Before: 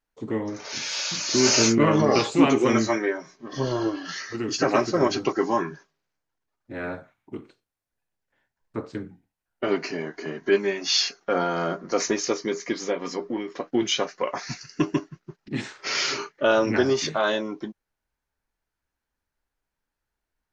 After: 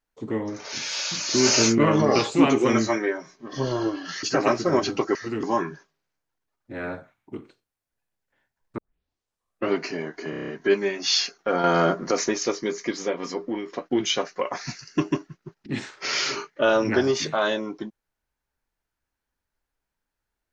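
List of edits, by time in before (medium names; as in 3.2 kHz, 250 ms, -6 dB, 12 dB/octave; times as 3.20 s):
4.23–4.51 s: move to 5.43 s
8.78 s: tape start 0.94 s
10.30 s: stutter 0.03 s, 7 plays
11.46–11.93 s: gain +6.5 dB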